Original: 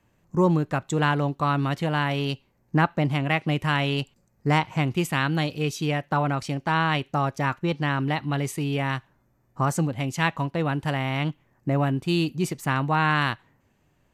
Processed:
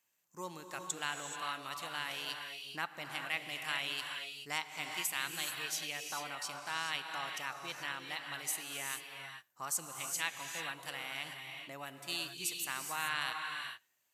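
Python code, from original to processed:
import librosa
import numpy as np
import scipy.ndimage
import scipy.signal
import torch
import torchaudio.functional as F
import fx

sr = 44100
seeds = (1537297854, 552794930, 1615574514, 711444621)

y = np.diff(x, prepend=0.0)
y = fx.rev_gated(y, sr, seeds[0], gate_ms=460, shape='rising', drr_db=3.5)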